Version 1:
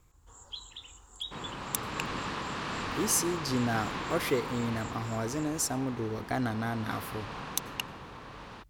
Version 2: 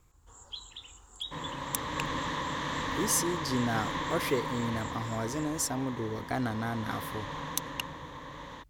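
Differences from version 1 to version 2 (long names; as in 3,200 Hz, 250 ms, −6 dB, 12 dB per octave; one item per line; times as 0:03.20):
second sound: add EQ curve with evenly spaced ripples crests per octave 1.1, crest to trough 11 dB
reverb: off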